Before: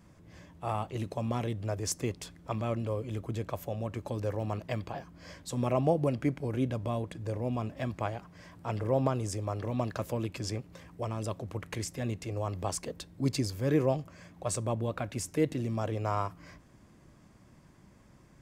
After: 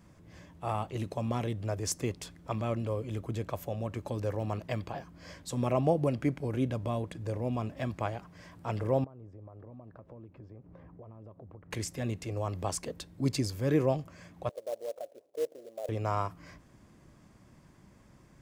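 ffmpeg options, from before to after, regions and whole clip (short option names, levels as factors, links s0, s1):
-filter_complex "[0:a]asettb=1/sr,asplit=3[s0][s1][s2];[s0]atrim=end=9.044[s3];[s1]atrim=start=9.04:end=11.71,asetpts=PTS-STARTPTS,afade=t=in:d=0.004:c=qsin,afade=t=out:st=2.666:d=0.004:c=qsin,acompressor=threshold=0.00562:ratio=10:attack=3.2:release=140:knee=1:detection=peak,lowpass=1000[s4];[s2]atrim=start=11.706[s5];[s3][s4]acrossfade=d=0.004:c1=hsin:c2=qsin[s6];[s6][s5]acrossfade=d=0.004:c1=qsin:c2=hsin,asettb=1/sr,asplit=3[s7][s8][s9];[s7]atrim=end=14.494[s10];[s8]atrim=start=14.49:end=15.89,asetpts=PTS-STARTPTS,afade=t=in:d=0.004:c=qsin,afade=t=out:st=1.396:d=0.004:c=qsin,asuperpass=centerf=550:order=4:qfactor=2.6,acrusher=bits=4:mode=log:mix=0:aa=0.000001[s11];[s9]atrim=start=15.886[s12];[s10][s11]acrossfade=d=0.004:c1=hsin:c2=qsin[s13];[s13][s12]acrossfade=d=0.004:c1=qsin:c2=hsin"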